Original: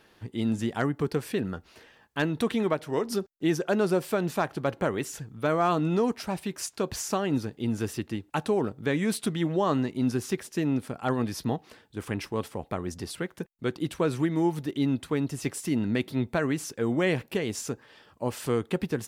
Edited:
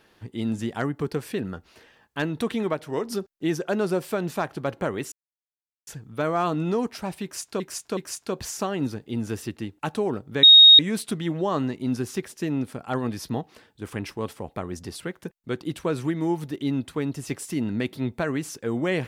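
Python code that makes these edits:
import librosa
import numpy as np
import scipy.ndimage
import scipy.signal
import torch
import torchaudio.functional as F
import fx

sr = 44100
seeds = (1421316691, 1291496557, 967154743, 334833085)

y = fx.edit(x, sr, fx.insert_silence(at_s=5.12, length_s=0.75),
    fx.repeat(start_s=6.48, length_s=0.37, count=3),
    fx.insert_tone(at_s=8.94, length_s=0.36, hz=3740.0, db=-7.0), tone=tone)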